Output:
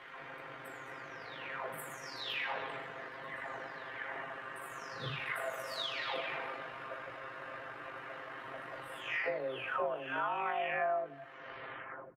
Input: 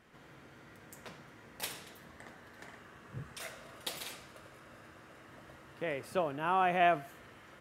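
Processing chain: delay that grows with frequency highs early, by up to 517 ms; three-band isolator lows -14 dB, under 440 Hz, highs -22 dB, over 3.2 kHz; compression 6:1, threshold -47 dBFS, peak gain reduction 20 dB; granular stretch 1.6×, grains 40 ms; on a send: feedback delay 92 ms, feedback 41%, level -19.5 dB; on the sum: trim +14.5 dB

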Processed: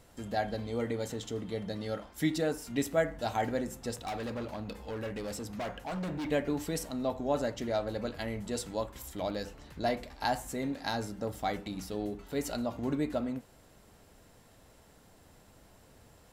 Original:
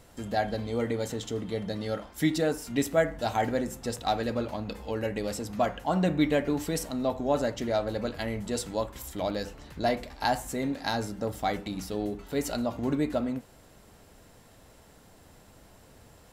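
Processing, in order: 3.94–6.31 s: overload inside the chain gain 29.5 dB; trim -4 dB

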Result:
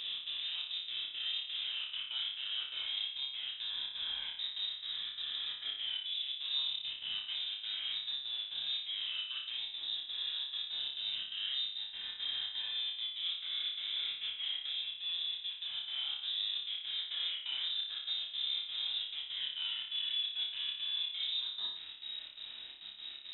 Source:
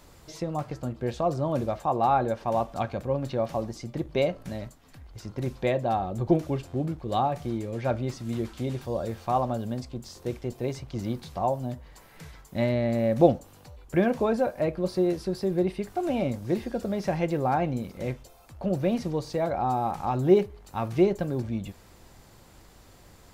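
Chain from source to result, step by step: reverse spectral sustain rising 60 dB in 1.90 s; reverse; compression 16:1, threshold -32 dBFS, peak gain reduction 22 dB; reverse; saturation -37 dBFS, distortion -10 dB; flange 1.6 Hz, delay 6.6 ms, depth 7.3 ms, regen -24%; trance gate "xx.xxxx.x.xx.x" 171 bpm; in parallel at -4 dB: companded quantiser 6-bit; on the sum: distance through air 330 m; flutter echo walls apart 5 m, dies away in 0.59 s; frequency inversion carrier 3.8 kHz

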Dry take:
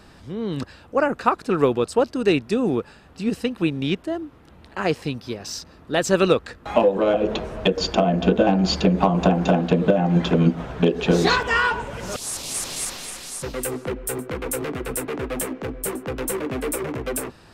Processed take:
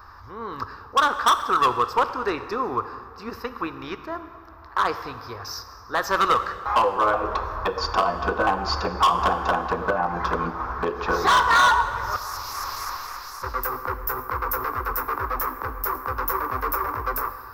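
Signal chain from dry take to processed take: FFT filter 100 Hz 0 dB, 150 Hz -22 dB, 440 Hz -8 dB, 650 Hz -8 dB, 1.1 kHz +14 dB, 3.1 kHz -16 dB, 5.3 kHz -1 dB, 8.9 kHz -27 dB, 14 kHz +7 dB; hard clipper -15.5 dBFS, distortion -6 dB; plate-style reverb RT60 2.1 s, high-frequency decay 0.7×, DRR 10 dB; trim +1.5 dB

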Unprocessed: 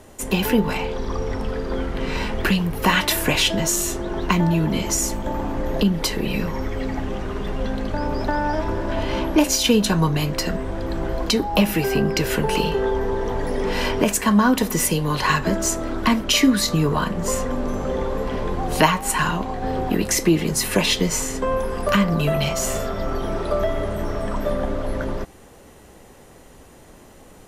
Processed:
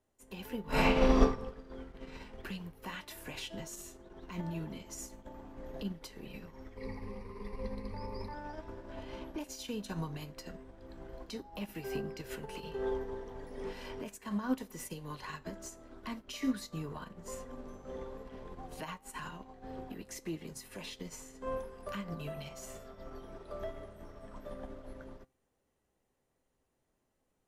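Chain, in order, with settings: 6.77–8.34 s: rippled EQ curve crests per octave 0.89, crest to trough 17 dB; peak limiter -12.5 dBFS, peak gain reduction 10 dB; feedback comb 130 Hz, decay 0.36 s, harmonics all, mix 50%; 0.65–1.22 s: reverb throw, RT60 1.2 s, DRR -9.5 dB; upward expansion 2.5:1, over -35 dBFS; trim -1 dB

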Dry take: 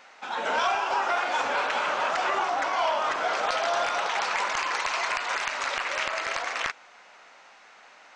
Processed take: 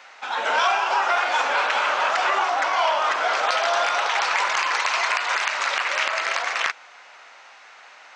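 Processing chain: frequency weighting A; trim +5 dB

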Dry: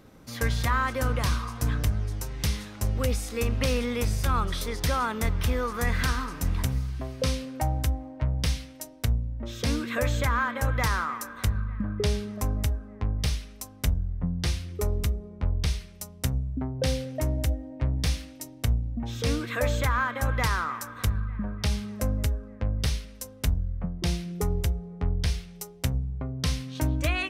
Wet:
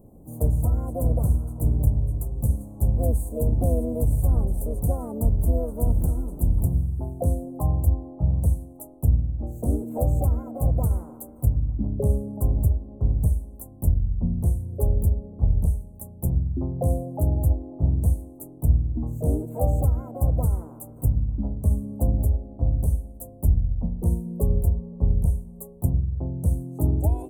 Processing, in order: inverse Chebyshev band-stop 1.2–5.4 kHz, stop band 40 dB; bass shelf 100 Hz +7 dB; harmony voices +5 st -6 dB

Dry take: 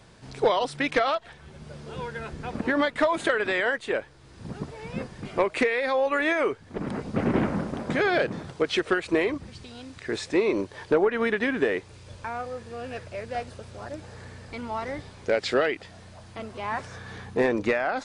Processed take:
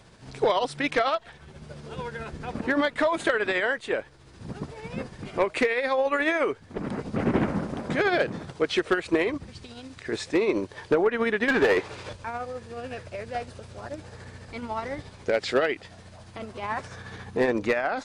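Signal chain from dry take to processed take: 11.48–12.13 s: overdrive pedal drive 24 dB, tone 1.7 kHz, clips at -12.5 dBFS; tremolo 14 Hz, depth 39%; hard clipper -15.5 dBFS, distortion -28 dB; trim +1.5 dB

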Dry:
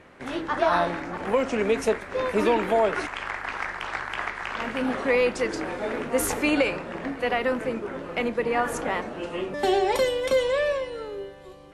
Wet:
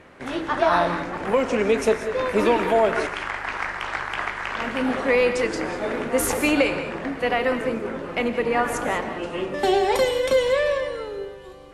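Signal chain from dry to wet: gated-style reverb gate 220 ms rising, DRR 9 dB; trim +2.5 dB

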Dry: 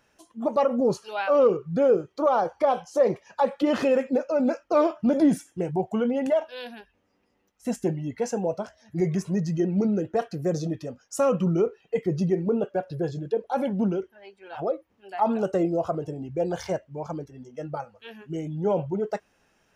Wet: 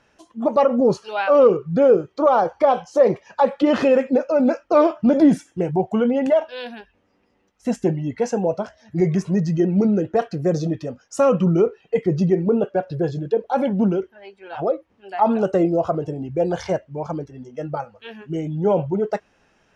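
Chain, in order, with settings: distance through air 67 m; trim +6 dB

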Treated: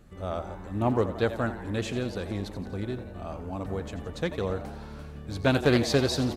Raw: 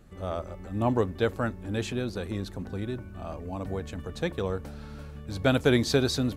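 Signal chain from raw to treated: on a send: frequency-shifting echo 87 ms, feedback 59%, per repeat +110 Hz, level -13 dB; on the sum: loudspeaker Doppler distortion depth 0.25 ms

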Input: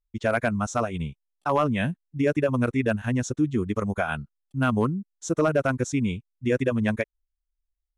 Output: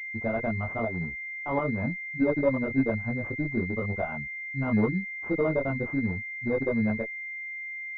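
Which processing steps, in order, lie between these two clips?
Chebyshev shaper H 4 -21 dB, 6 -32 dB, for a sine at -12.5 dBFS; chorus voices 6, 0.84 Hz, delay 20 ms, depth 2.6 ms; class-D stage that switches slowly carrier 2.1 kHz

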